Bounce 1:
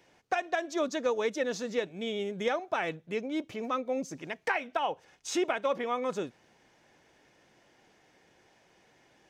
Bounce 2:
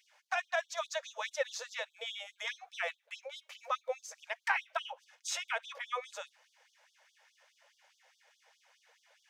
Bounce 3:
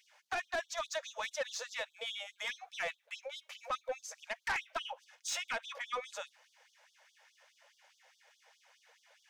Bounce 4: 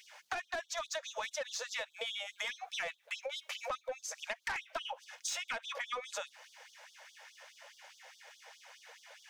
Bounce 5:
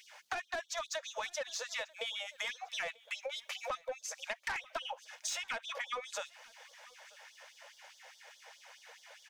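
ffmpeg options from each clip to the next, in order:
ffmpeg -i in.wav -af "bandreject=frequency=730:width=12,afftfilt=real='re*gte(b*sr/1024,450*pow(3200/450,0.5+0.5*sin(2*PI*4.8*pts/sr)))':imag='im*gte(b*sr/1024,450*pow(3200/450,0.5+0.5*sin(2*PI*4.8*pts/sr)))':win_size=1024:overlap=0.75" out.wav
ffmpeg -i in.wav -af "aeval=exprs='(tanh(35.5*val(0)+0.05)-tanh(0.05))/35.5':channel_layout=same,volume=1.5dB" out.wav
ffmpeg -i in.wav -af "acompressor=threshold=-47dB:ratio=6,volume=10dB" out.wav
ffmpeg -i in.wav -af "aecho=1:1:940:0.0668" out.wav

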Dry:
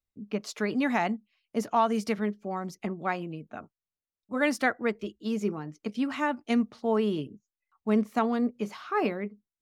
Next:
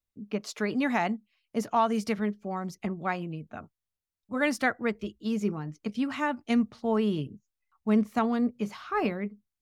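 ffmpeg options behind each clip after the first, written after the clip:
ffmpeg -i in.wav -af "asubboost=boost=2.5:cutoff=180" out.wav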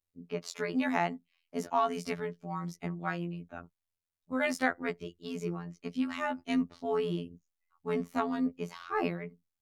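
ffmpeg -i in.wav -af "afftfilt=real='hypot(re,im)*cos(PI*b)':imag='0':win_size=2048:overlap=0.75" out.wav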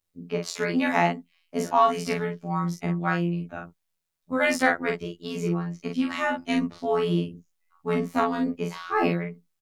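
ffmpeg -i in.wav -filter_complex "[0:a]asplit=2[link_01][link_02];[link_02]adelay=41,volume=-4dB[link_03];[link_01][link_03]amix=inputs=2:normalize=0,volume=7dB" out.wav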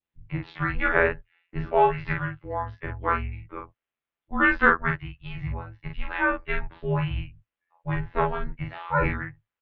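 ffmpeg -i in.wav -af "highpass=frequency=230:width_type=q:width=0.5412,highpass=frequency=230:width_type=q:width=1.307,lowpass=frequency=3400:width_type=q:width=0.5176,lowpass=frequency=3400:width_type=q:width=0.7071,lowpass=frequency=3400:width_type=q:width=1.932,afreqshift=-280,adynamicequalizer=threshold=0.00891:dfrequency=1500:dqfactor=1.4:tfrequency=1500:tqfactor=1.4:attack=5:release=100:ratio=0.375:range=4:mode=boostabove:tftype=bell,volume=-1dB" out.wav

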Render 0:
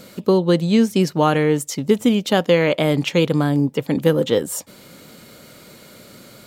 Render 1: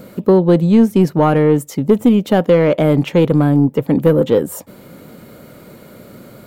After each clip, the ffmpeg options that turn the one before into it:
ffmpeg -i in.wav -af "acontrast=87,equalizer=frequency=5300:width_type=o:width=2.8:gain=-14.5" out.wav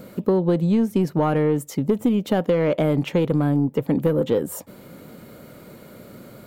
ffmpeg -i in.wav -af "acompressor=threshold=-12dB:ratio=6,volume=-4dB" out.wav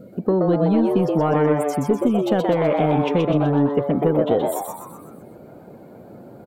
ffmpeg -i in.wav -filter_complex "[0:a]afftdn=noise_reduction=16:noise_floor=-43,asplit=7[link_01][link_02][link_03][link_04][link_05][link_06][link_07];[link_02]adelay=125,afreqshift=140,volume=-4dB[link_08];[link_03]adelay=250,afreqshift=280,volume=-10dB[link_09];[link_04]adelay=375,afreqshift=420,volume=-16dB[link_10];[link_05]adelay=500,afreqshift=560,volume=-22.1dB[link_11];[link_06]adelay=625,afreqshift=700,volume=-28.1dB[link_12];[link_07]adelay=750,afreqshift=840,volume=-34.1dB[link_13];[link_01][link_08][link_09][link_10][link_11][link_12][link_13]amix=inputs=7:normalize=0" out.wav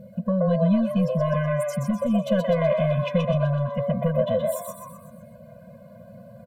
ffmpeg -i in.wav -af "afftfilt=real='re*eq(mod(floor(b*sr/1024/240),2),0)':imag='im*eq(mod(floor(b*sr/1024/240),2),0)':win_size=1024:overlap=0.75" out.wav

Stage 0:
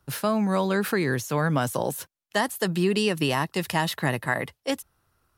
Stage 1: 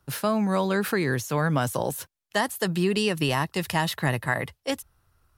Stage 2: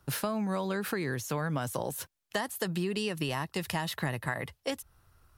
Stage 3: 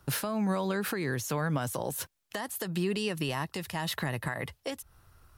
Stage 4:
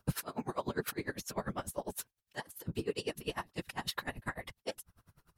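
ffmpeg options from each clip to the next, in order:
ffmpeg -i in.wav -af "asubboost=boost=2.5:cutoff=130" out.wav
ffmpeg -i in.wav -af "acompressor=threshold=-33dB:ratio=4,volume=2.5dB" out.wav
ffmpeg -i in.wav -af "alimiter=level_in=0.5dB:limit=-24dB:level=0:latency=1:release=248,volume=-0.5dB,volume=4dB" out.wav
ffmpeg -i in.wav -af "flanger=delay=1.8:depth=2.2:regen=-55:speed=0.4:shape=triangular,afftfilt=real='hypot(re,im)*cos(2*PI*random(0))':imag='hypot(re,im)*sin(2*PI*random(1))':win_size=512:overlap=0.75,aeval=exprs='val(0)*pow(10,-27*(0.5-0.5*cos(2*PI*10*n/s))/20)':channel_layout=same,volume=10dB" out.wav

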